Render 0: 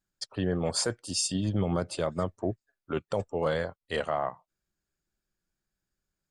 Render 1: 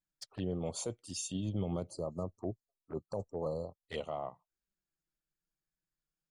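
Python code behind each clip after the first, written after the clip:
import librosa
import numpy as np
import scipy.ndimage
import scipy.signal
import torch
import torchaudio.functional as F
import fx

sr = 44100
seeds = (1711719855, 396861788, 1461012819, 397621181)

y = fx.spec_erase(x, sr, start_s=1.9, length_s=1.96, low_hz=1300.0, high_hz=4000.0)
y = fx.env_flanger(y, sr, rest_ms=6.5, full_db=-28.5)
y = y * 10.0 ** (-7.0 / 20.0)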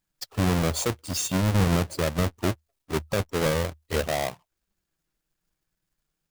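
y = fx.halfwave_hold(x, sr)
y = fx.peak_eq(y, sr, hz=77.0, db=10.0, octaves=0.31)
y = y * 10.0 ** (8.5 / 20.0)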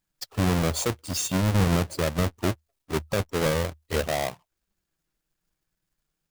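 y = x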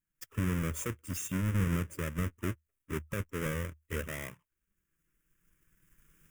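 y = fx.recorder_agc(x, sr, target_db=-19.0, rise_db_per_s=13.0, max_gain_db=30)
y = fx.fixed_phaser(y, sr, hz=1800.0, stages=4)
y = y * 10.0 ** (-7.0 / 20.0)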